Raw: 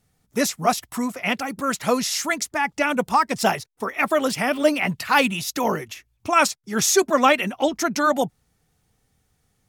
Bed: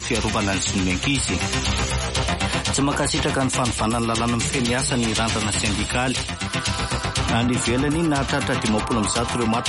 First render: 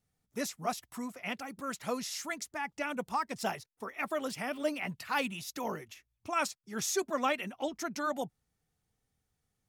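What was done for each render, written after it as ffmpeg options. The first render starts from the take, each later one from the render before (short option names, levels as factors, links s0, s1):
-af "volume=0.2"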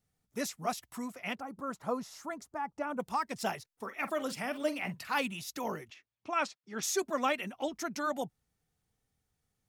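-filter_complex "[0:a]asettb=1/sr,asplit=3[s0][s1][s2];[s0]atrim=end=1.354[s3];[s1]atrim=start=1.35:end=3,asetpts=PTS-STARTPTS,afade=t=in:d=0.004:c=qsin,afade=t=out:st=1.646:d=0.004:c=qsin,highshelf=f=1600:t=q:w=1.5:g=-11[s4];[s2]atrim=start=2.996[s5];[s3][s4]acrossfade=d=0.004:c1=hsin:c2=qsin[s6];[s6][s5]acrossfade=d=0.004:c1=qsin:c2=hsin,asettb=1/sr,asplit=3[s7][s8][s9];[s7]atrim=end=3.704[s10];[s8]atrim=start=3.7:end=5.19,asetpts=PTS-STARTPTS,afade=t=in:d=0.004:c=qsin,afade=t=out:st=1.486:d=0.004:c=qsin,asplit=2[s11][s12];[s12]adelay=45,volume=0.211[s13];[s11][s13]amix=inputs=2:normalize=0,atrim=end_sample=65709[s14];[s9]atrim=start=5.186[s15];[s10][s14]acrossfade=d=0.004:c1=hsin:c2=qsin[s16];[s16][s15]acrossfade=d=0.004:c1=qsin:c2=hsin,asettb=1/sr,asplit=3[s17][s18][s19];[s17]atrim=end=5.904[s20];[s18]atrim=start=5.9:end=6.83,asetpts=PTS-STARTPTS,afade=t=in:d=0.004:c=qsin,afade=t=out:st=0.926:d=0.004:c=qsin,highpass=200,lowpass=4300[s21];[s19]atrim=start=6.826[s22];[s20][s21]acrossfade=d=0.004:c1=hsin:c2=qsin[s23];[s23][s22]acrossfade=d=0.004:c1=qsin:c2=hsin"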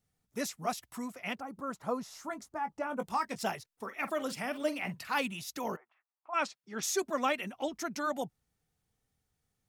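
-filter_complex "[0:a]asettb=1/sr,asplit=3[s0][s1][s2];[s0]atrim=end=2.064[s3];[s1]atrim=start=2.06:end=3.42,asetpts=PTS-STARTPTS,afade=t=in:d=0.004:c=qsin,afade=t=out:st=1.356:d=0.004:c=qsin,asplit=2[s4][s5];[s5]adelay=19,volume=0.376[s6];[s4][s6]amix=inputs=2:normalize=0,atrim=end_sample=59976[s7];[s2]atrim=start=3.416[s8];[s3][s7]acrossfade=d=0.004:c1=hsin:c2=qsin[s9];[s9][s8]acrossfade=d=0.004:c1=qsin:c2=hsin,asplit=3[s10][s11][s12];[s10]afade=t=out:st=5.75:d=0.02[s13];[s11]asuperpass=centerf=980:order=4:qfactor=1.5,afade=t=in:st=5.75:d=0.02,afade=t=out:st=6.33:d=0.02[s14];[s12]afade=t=in:st=6.33:d=0.02[s15];[s13][s14][s15]amix=inputs=3:normalize=0"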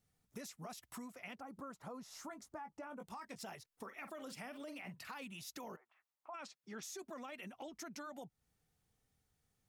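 -af "alimiter=level_in=1.78:limit=0.0631:level=0:latency=1:release=17,volume=0.562,acompressor=threshold=0.00447:ratio=5"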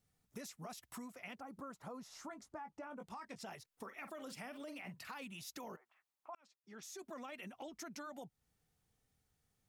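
-filter_complex "[0:a]asettb=1/sr,asplit=3[s0][s1][s2];[s0]atrim=end=2.084[s3];[s1]atrim=start=2.08:end=3.51,asetpts=PTS-STARTPTS,afade=t=in:d=0.004:c=qsin,afade=t=out:st=1.426:d=0.004:c=qsin,highshelf=f=11000:g=-12[s4];[s2]atrim=start=3.506[s5];[s3][s4]acrossfade=d=0.004:c1=hsin:c2=qsin[s6];[s6][s5]acrossfade=d=0.004:c1=qsin:c2=hsin,asplit=2[s7][s8];[s7]atrim=end=6.35,asetpts=PTS-STARTPTS,afade=t=out:st=6.346:d=0.004:c=hsin[s9];[s8]atrim=start=6.35,asetpts=PTS-STARTPTS,afade=t=in:d=0.78[s10];[s9][s10]concat=n=2:v=0:a=1"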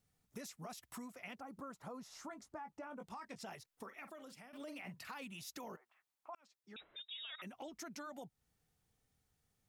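-filter_complex "[0:a]asettb=1/sr,asplit=3[s0][s1][s2];[s0]atrim=end=6.764[s3];[s1]atrim=start=6.76:end=7.42,asetpts=PTS-STARTPTS,afade=t=in:d=0.004:c=qsin,afade=t=out:st=0.656:d=0.004:c=qsin,lowpass=f=3400:t=q:w=0.5098,lowpass=f=3400:t=q:w=0.6013,lowpass=f=3400:t=q:w=0.9,lowpass=f=3400:t=q:w=2.563,afreqshift=-4000[s4];[s2]atrim=start=7.416[s5];[s3][s4]acrossfade=d=0.004:c1=hsin:c2=qsin[s6];[s6][s5]acrossfade=d=0.004:c1=qsin:c2=hsin,asplit=2[s7][s8];[s7]atrim=end=4.53,asetpts=PTS-STARTPTS,afade=t=out:st=3.7:d=0.83:silence=0.281838[s9];[s8]atrim=start=4.53,asetpts=PTS-STARTPTS,afade=t=in:d=0.004:c=hsin:silence=0.281838[s10];[s9][s10]concat=n=2:v=0:a=1"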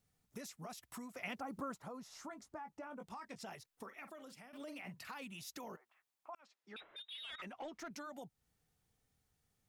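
-filter_complex "[0:a]asettb=1/sr,asplit=3[s0][s1][s2];[s0]atrim=end=6.394[s3];[s1]atrim=start=6.39:end=7.91,asetpts=PTS-STARTPTS,afade=t=in:d=0.004:c=qsin,afade=t=out:st=1.516:d=0.004:c=qsin,asplit=2[s4][s5];[s5]highpass=f=720:p=1,volume=5.01,asoftclip=type=tanh:threshold=0.015[s6];[s4][s6]amix=inputs=2:normalize=0,lowpass=f=1900:p=1,volume=0.501[s7];[s2]atrim=start=7.906[s8];[s3][s7]acrossfade=d=0.004:c1=hsin:c2=qsin[s9];[s9][s8]acrossfade=d=0.004:c1=qsin:c2=hsin,asplit=3[s10][s11][s12];[s10]atrim=end=1.152[s13];[s11]atrim=start=1.148:end=1.782,asetpts=PTS-STARTPTS,volume=2[s14];[s12]atrim=start=1.778[s15];[s13][s14]acrossfade=d=0.004:c1=hsin:c2=hsin[s16];[s16][s15]acrossfade=d=0.004:c1=hsin:c2=hsin"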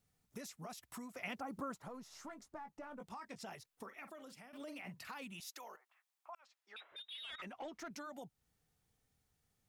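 -filter_complex "[0:a]asettb=1/sr,asplit=3[s0][s1][s2];[s0]atrim=end=1.874[s3];[s1]atrim=start=1.87:end=3,asetpts=PTS-STARTPTS,afade=t=in:d=0.004:c=qsin,afade=t=out:st=1.126:d=0.004:c=qsin,aeval=exprs='if(lt(val(0),0),0.708*val(0),val(0))':c=same[s4];[s2]atrim=start=2.996[s5];[s3][s4]acrossfade=d=0.004:c1=hsin:c2=qsin[s6];[s6][s5]acrossfade=d=0.004:c1=qsin:c2=hsin,asettb=1/sr,asplit=3[s7][s8][s9];[s7]atrim=end=5.404[s10];[s8]atrim=start=5.4:end=6.92,asetpts=PTS-STARTPTS,afade=t=in:d=0.004:c=qsin,afade=t=out:st=1.516:d=0.004:c=qsin,highpass=650[s11];[s9]atrim=start=6.916[s12];[s10][s11]acrossfade=d=0.004:c1=hsin:c2=qsin[s13];[s13][s12]acrossfade=d=0.004:c1=qsin:c2=hsin"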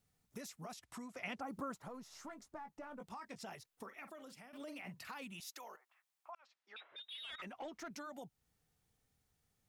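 -filter_complex "[0:a]asettb=1/sr,asplit=3[s0][s1][s2];[s0]atrim=end=0.744[s3];[s1]atrim=start=0.74:end=1.42,asetpts=PTS-STARTPTS,afade=t=in:d=0.004:c=qsin,afade=t=out:st=0.676:d=0.004:c=qsin,lowpass=9300[s4];[s2]atrim=start=1.416[s5];[s3][s4]acrossfade=d=0.004:c1=hsin:c2=qsin[s6];[s6][s5]acrossfade=d=0.004:c1=qsin:c2=hsin,asettb=1/sr,asplit=3[s7][s8][s9];[s7]atrim=end=6.314[s10];[s8]atrim=start=6.31:end=7.03,asetpts=PTS-STARTPTS,afade=t=in:d=0.004:c=qsin,afade=t=out:st=0.716:d=0.004:c=qsin,highpass=110,lowpass=5600[s11];[s9]atrim=start=7.026[s12];[s10][s11]acrossfade=d=0.004:c1=hsin:c2=qsin[s13];[s13][s12]acrossfade=d=0.004:c1=qsin:c2=hsin"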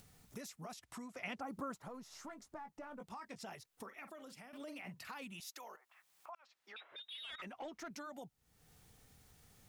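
-af "acompressor=mode=upward:threshold=0.00316:ratio=2.5"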